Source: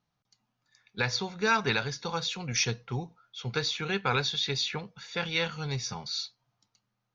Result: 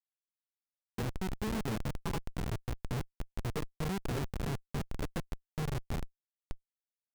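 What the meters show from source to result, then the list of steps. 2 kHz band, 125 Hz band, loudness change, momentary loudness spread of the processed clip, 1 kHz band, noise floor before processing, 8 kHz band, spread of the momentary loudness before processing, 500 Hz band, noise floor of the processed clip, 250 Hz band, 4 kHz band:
-15.5 dB, -2.0 dB, -8.5 dB, 9 LU, -10.0 dB, -82 dBFS, n/a, 11 LU, -7.5 dB, under -85 dBFS, -1.0 dB, -18.5 dB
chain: one diode to ground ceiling -29.5 dBFS; phaser stages 12, 0.3 Hz, lowest notch 350–4300 Hz; on a send: echo with dull and thin repeats by turns 0.282 s, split 1500 Hz, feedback 81%, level -10 dB; on the sum: dynamic EQ 140 Hz, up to -4 dB, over -46 dBFS, Q 1.7; treble ducked by the level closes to 490 Hz, closed at -31 dBFS; Schmitt trigger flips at -35.5 dBFS; gain +7 dB

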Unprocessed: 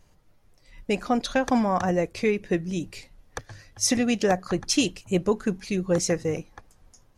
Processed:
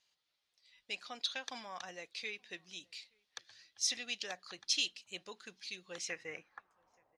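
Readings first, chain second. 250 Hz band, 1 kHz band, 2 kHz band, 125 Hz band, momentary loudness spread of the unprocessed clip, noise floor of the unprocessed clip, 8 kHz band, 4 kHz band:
-32.0 dB, -21.0 dB, -10.0 dB, under -30 dB, 17 LU, -60 dBFS, -11.0 dB, -4.5 dB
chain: band-pass sweep 3800 Hz -> 660 Hz, 5.84–7.14; outdoor echo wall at 150 m, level -30 dB; gain -1 dB

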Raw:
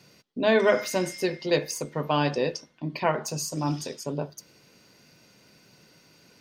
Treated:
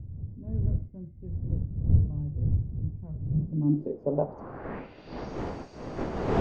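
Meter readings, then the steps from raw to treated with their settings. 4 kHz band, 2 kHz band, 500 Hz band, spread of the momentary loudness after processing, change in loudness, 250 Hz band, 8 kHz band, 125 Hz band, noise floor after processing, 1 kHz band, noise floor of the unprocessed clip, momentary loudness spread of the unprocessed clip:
under -15 dB, under -15 dB, -8.5 dB, 15 LU, -4.0 dB, -1.0 dB, under -25 dB, +7.5 dB, -49 dBFS, -8.5 dB, -59 dBFS, 13 LU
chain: wind noise 530 Hz -29 dBFS; low-pass sweep 100 Hz -> 7600 Hz, 3.2–5.42; air absorption 100 m

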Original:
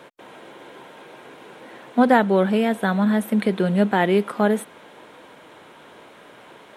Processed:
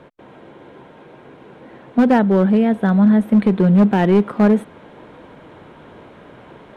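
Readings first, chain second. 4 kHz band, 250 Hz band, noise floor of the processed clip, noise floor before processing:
n/a, +7.0 dB, -44 dBFS, -47 dBFS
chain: RIAA curve playback; vocal rider 2 s; hard clip -7.5 dBFS, distortion -18 dB

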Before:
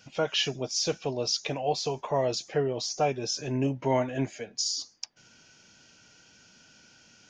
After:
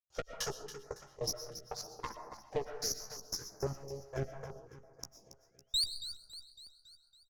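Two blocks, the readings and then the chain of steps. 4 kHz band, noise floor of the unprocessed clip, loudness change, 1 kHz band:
-7.0 dB, -59 dBFS, -10.5 dB, -14.0 dB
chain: resonant low shelf 130 Hz +11.5 dB, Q 3; power-law curve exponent 1.4; EQ curve 100 Hz 0 dB, 260 Hz -7 dB, 370 Hz +6 dB, 650 Hz +6 dB, 1400 Hz +10 dB, 2400 Hz -18 dB, 5900 Hz +7 dB, 8600 Hz +1 dB; compressor 5:1, threshold -30 dBFS, peak gain reduction 12 dB; painted sound rise, 5.34–6.01, 1400–7100 Hz -30 dBFS; expander -58 dBFS; step gate ".x..x..." 149 bpm -60 dB; tube stage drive 31 dB, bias 0.75; doubler 15 ms -9 dB; feedback echo 0.278 s, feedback 55%, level -12 dB; digital reverb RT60 0.99 s, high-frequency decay 0.35×, pre-delay 80 ms, DRR 9 dB; stepped notch 6 Hz 210–3100 Hz; gain +4.5 dB

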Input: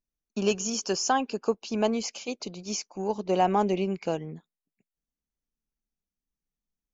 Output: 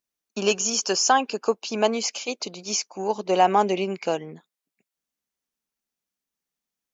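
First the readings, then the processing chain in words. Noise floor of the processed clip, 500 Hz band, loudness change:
under -85 dBFS, +4.0 dB, +5.0 dB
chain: HPF 540 Hz 6 dB/oct; gain +7.5 dB

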